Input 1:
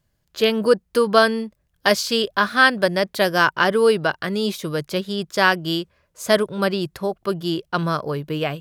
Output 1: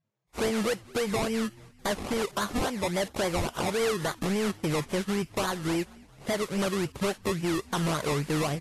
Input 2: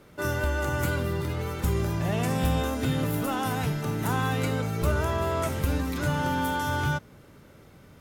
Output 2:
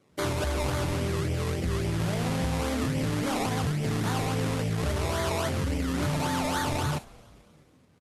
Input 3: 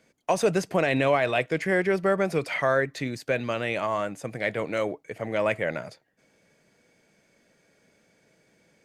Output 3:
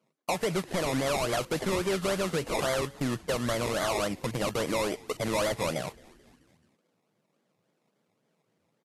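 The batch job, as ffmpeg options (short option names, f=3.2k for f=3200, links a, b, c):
-filter_complex "[0:a]highpass=59,afwtdn=0.0282,lowpass=f=3.1k:p=1,asplit=2[a][b];[b]alimiter=limit=-10.5dB:level=0:latency=1:release=268,volume=1dB[c];[a][c]amix=inputs=2:normalize=0,acompressor=threshold=-23dB:ratio=6,acrusher=samples=23:mix=1:aa=0.000001:lfo=1:lforange=13.8:lforate=3.6,asoftclip=type=hard:threshold=-24dB,asplit=2[d][e];[e]asplit=4[f][g][h][i];[f]adelay=217,afreqshift=-100,volume=-24dB[j];[g]adelay=434,afreqshift=-200,volume=-28.2dB[k];[h]adelay=651,afreqshift=-300,volume=-32.3dB[l];[i]adelay=868,afreqshift=-400,volume=-36.5dB[m];[j][k][l][m]amix=inputs=4:normalize=0[n];[d][n]amix=inputs=2:normalize=0" -ar 32000 -c:a libvorbis -b:a 32k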